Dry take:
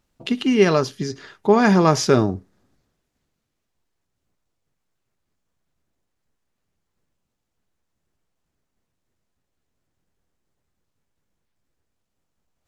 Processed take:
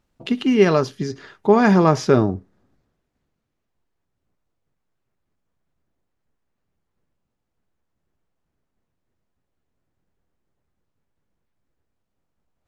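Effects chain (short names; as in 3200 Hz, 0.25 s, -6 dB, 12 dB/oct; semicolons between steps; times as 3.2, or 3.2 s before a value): high shelf 3300 Hz -6.5 dB, from 1.84 s -11.5 dB; gain +1 dB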